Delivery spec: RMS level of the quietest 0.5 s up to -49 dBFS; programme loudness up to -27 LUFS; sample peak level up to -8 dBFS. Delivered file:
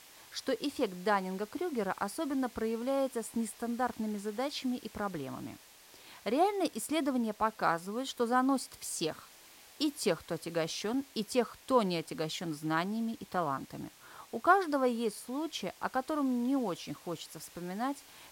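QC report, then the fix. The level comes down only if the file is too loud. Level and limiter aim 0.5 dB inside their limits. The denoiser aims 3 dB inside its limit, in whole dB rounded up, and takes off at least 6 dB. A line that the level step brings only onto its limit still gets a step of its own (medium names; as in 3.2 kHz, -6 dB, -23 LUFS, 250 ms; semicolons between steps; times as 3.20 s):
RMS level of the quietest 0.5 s -57 dBFS: pass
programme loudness -34.0 LUFS: pass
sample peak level -12.0 dBFS: pass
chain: none needed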